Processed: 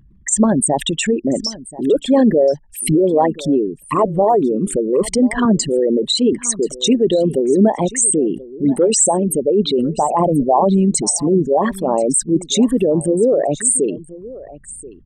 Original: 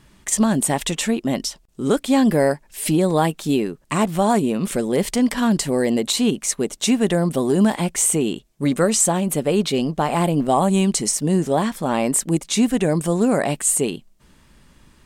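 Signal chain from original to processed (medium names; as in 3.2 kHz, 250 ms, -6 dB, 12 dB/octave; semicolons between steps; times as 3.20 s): resonances exaggerated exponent 3; delay 1033 ms -18.5 dB; 5.45–6.33 s: three bands expanded up and down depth 40%; trim +4 dB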